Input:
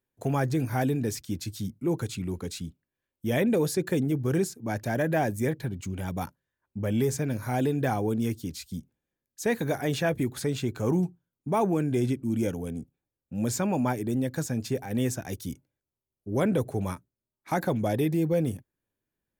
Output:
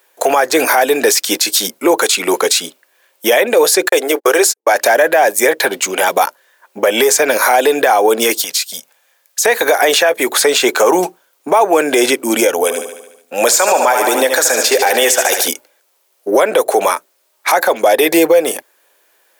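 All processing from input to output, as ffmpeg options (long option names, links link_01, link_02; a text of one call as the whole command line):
ffmpeg -i in.wav -filter_complex "[0:a]asettb=1/sr,asplit=3[link_01][link_02][link_03];[link_01]atrim=end=3.894[link_04];[link_02]atrim=start=3.89:end=4.75,asetpts=PTS-STARTPTS,afade=type=in:duration=0.004:curve=qsin,afade=type=out:start_time=0.856:duration=0.004:curve=qsin,highpass=frequency=340:width=0.5412,highpass=frequency=340:width=1.3066,agate=range=-51dB:threshold=-40dB:ratio=16:release=100:detection=peak[link_05];[link_03]atrim=start=4.746[link_06];[link_04][link_05]acrossfade=duration=0.004:curve1=hsin:curve2=qsin[link_07];[link_07][link_06]acrossfade=duration=0.004:curve1=qsin:curve2=hsin,asettb=1/sr,asplit=3[link_08][link_09][link_10];[link_08]atrim=end=8.414[link_11];[link_09]atrim=start=8.41:end=9.45,asetpts=PTS-STARTPTS,afade=type=in:duration=0.004:curve=qsin,afade=type=out:start_time=1.036:duration=0.004:curve=qsin,acrossover=split=140|360[link_12][link_13][link_14];[link_12]acompressor=threshold=-44dB:ratio=4[link_15];[link_13]acompressor=threshold=-48dB:ratio=4[link_16];[link_14]acompressor=threshold=-49dB:ratio=4[link_17];[link_15][link_16][link_17]amix=inputs=3:normalize=0,equalizer=frequency=350:width=1.5:gain=-14.5[link_18];[link_10]atrim=start=9.446[link_19];[link_11][link_18]acrossfade=duration=0.004:curve1=hsin:curve2=qsin[link_20];[link_20][link_19]acrossfade=duration=0.004:curve1=qsin:curve2=hsin,asettb=1/sr,asplit=3[link_21][link_22][link_23];[link_21]atrim=end=12.634[link_24];[link_22]atrim=start=12.63:end=15.48,asetpts=PTS-STARTPTS,afade=type=in:duration=0.004:curve=qsin,afade=type=out:start_time=2.846:duration=0.004:curve=qsin,lowshelf=frequency=270:gain=-10,aecho=1:1:73|146|219|292|365|438|511:0.335|0.198|0.117|0.0688|0.0406|0.0239|0.0141,atrim=end_sample=125685[link_25];[link_23]atrim=start=15.476[link_26];[link_24][link_25]acrossfade=duration=0.004:curve1=hsin:curve2=qsin[link_27];[link_27][link_26]acrossfade=duration=0.004:curve1=qsin:curve2=hsin,highpass=frequency=510:width=0.5412,highpass=frequency=510:width=1.3066,acompressor=threshold=-39dB:ratio=5,alimiter=level_in=34.5dB:limit=-1dB:release=50:level=0:latency=1,volume=-1dB" out.wav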